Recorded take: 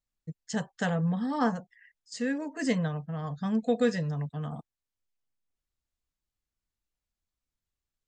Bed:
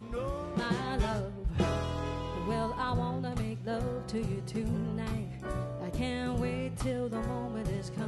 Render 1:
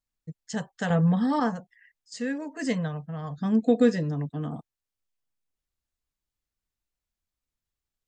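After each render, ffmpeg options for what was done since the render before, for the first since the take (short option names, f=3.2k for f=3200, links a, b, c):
-filter_complex "[0:a]asettb=1/sr,asplit=3[a][b][c];[a]atrim=end=0.904[d];[b]atrim=start=0.9:end=1.4,asetpts=PTS-STARTPTS,afade=t=in:d=0.004:c=qsin,afade=t=out:st=0.496:d=0.004:c=qsin,acontrast=60[e];[c]atrim=start=1.396[f];[d][e]acrossfade=d=0.004:c1=hsin:c2=qsin[g];[g][f]acrossfade=d=0.004:c1=qsin:c2=hsin,asettb=1/sr,asplit=3[h][i][j];[h]atrim=end=3.384[k];[i]atrim=start=3.38:end=4.57,asetpts=PTS-STARTPTS,afade=t=in:d=0.004:c=qsin,afade=t=out:st=1.186:d=0.004:c=qsin,equalizer=f=310:t=o:w=0.77:g=13.5[l];[j]atrim=start=4.566[m];[k][l]acrossfade=d=0.004:c1=hsin:c2=qsin[n];[n][m]acrossfade=d=0.004:c1=qsin:c2=hsin"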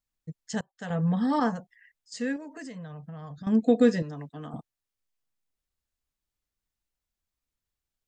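-filter_complex "[0:a]asettb=1/sr,asplit=3[a][b][c];[a]atrim=end=2.364[d];[b]atrim=start=2.36:end=3.47,asetpts=PTS-STARTPTS,afade=t=in:d=0.004:c=qsin,afade=t=out:st=1.106:d=0.004:c=qsin,acompressor=threshold=-37dB:ratio=16:attack=3.2:release=140:knee=1:detection=peak[e];[c]atrim=start=3.466[f];[d][e]acrossfade=d=0.004:c1=hsin:c2=qsin[g];[g][f]acrossfade=d=0.004:c1=qsin:c2=hsin,asettb=1/sr,asplit=3[h][i][j];[h]atrim=end=4.024[k];[i]atrim=start=4.02:end=4.54,asetpts=PTS-STARTPTS,afade=t=in:d=0.004:c=qsin,afade=t=out:st=0.516:d=0.004:c=qsin,lowshelf=f=420:g=-11.5[l];[j]atrim=start=4.536[m];[k][l]acrossfade=d=0.004:c1=hsin:c2=qsin[n];[n][m]acrossfade=d=0.004:c1=qsin:c2=hsin,asplit=2[o][p];[o]atrim=end=0.61,asetpts=PTS-STARTPTS,afade=t=out:st=0.606:d=0.004:c=hsin:silence=0.0630957[q];[p]atrim=start=0.61,asetpts=PTS-STARTPTS,afade=t=in:d=0.74:silence=0.0630957[r];[q][r]concat=n=2:v=0:a=1"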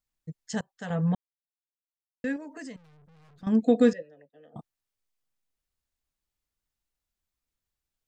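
-filter_complex "[0:a]asettb=1/sr,asplit=3[a][b][c];[a]atrim=end=2.764[d];[b]atrim=start=2.76:end=3.43,asetpts=PTS-STARTPTS,afade=t=in:d=0.004:c=qsin,afade=t=out:st=0.666:d=0.004:c=qsin,aeval=exprs='(tanh(708*val(0)+0.4)-tanh(0.4))/708':c=same[e];[c]atrim=start=3.426[f];[d][e]acrossfade=d=0.004:c1=hsin:c2=qsin[g];[g][f]acrossfade=d=0.004:c1=qsin:c2=hsin,asettb=1/sr,asplit=3[h][i][j];[h]atrim=end=3.934[k];[i]atrim=start=3.93:end=4.56,asetpts=PTS-STARTPTS,afade=t=in:d=0.004:c=qsin,afade=t=out:st=0.626:d=0.004:c=qsin,asplit=3[l][m][n];[l]bandpass=f=530:t=q:w=8,volume=0dB[o];[m]bandpass=f=1.84k:t=q:w=8,volume=-6dB[p];[n]bandpass=f=2.48k:t=q:w=8,volume=-9dB[q];[o][p][q]amix=inputs=3:normalize=0[r];[j]atrim=start=4.556[s];[k][r]acrossfade=d=0.004:c1=hsin:c2=qsin[t];[t][s]acrossfade=d=0.004:c1=qsin:c2=hsin,asplit=3[u][v][w];[u]atrim=end=1.15,asetpts=PTS-STARTPTS,afade=t=out:st=1.146:d=0.004:c=hsin[x];[v]atrim=start=1.15:end=2.24,asetpts=PTS-STARTPTS,volume=0[y];[w]atrim=start=2.24,asetpts=PTS-STARTPTS,afade=t=in:d=0.004:c=hsin[z];[x][y][z]concat=n=3:v=0:a=1"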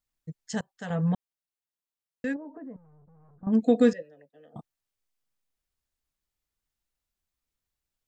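-filter_complex "[0:a]asplit=3[a][b][c];[a]afade=t=out:st=2.33:d=0.02[d];[b]lowpass=f=1.1k:w=0.5412,lowpass=f=1.1k:w=1.3066,afade=t=in:st=2.33:d=0.02,afade=t=out:st=3.52:d=0.02[e];[c]afade=t=in:st=3.52:d=0.02[f];[d][e][f]amix=inputs=3:normalize=0"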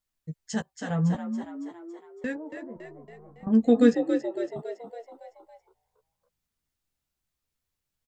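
-filter_complex "[0:a]asplit=2[a][b];[b]adelay=13,volume=-6.5dB[c];[a][c]amix=inputs=2:normalize=0,asplit=2[d][e];[e]asplit=6[f][g][h][i][j][k];[f]adelay=279,afreqshift=57,volume=-8dB[l];[g]adelay=558,afreqshift=114,volume=-13.4dB[m];[h]adelay=837,afreqshift=171,volume=-18.7dB[n];[i]adelay=1116,afreqshift=228,volume=-24.1dB[o];[j]adelay=1395,afreqshift=285,volume=-29.4dB[p];[k]adelay=1674,afreqshift=342,volume=-34.8dB[q];[l][m][n][o][p][q]amix=inputs=6:normalize=0[r];[d][r]amix=inputs=2:normalize=0"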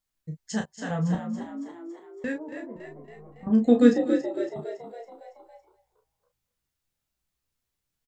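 -filter_complex "[0:a]asplit=2[a][b];[b]adelay=33,volume=-6dB[c];[a][c]amix=inputs=2:normalize=0,aecho=1:1:242:0.133"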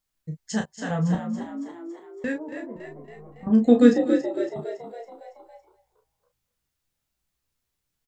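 -af "volume=2.5dB,alimiter=limit=-3dB:level=0:latency=1"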